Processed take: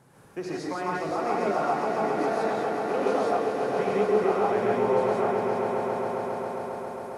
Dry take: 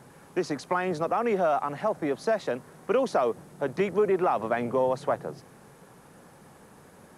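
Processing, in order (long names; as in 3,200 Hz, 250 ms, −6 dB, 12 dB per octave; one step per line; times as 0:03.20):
echo that builds up and dies away 135 ms, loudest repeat 5, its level −8.5 dB
reverb whose tail is shaped and stops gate 200 ms rising, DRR −4.5 dB
level −8 dB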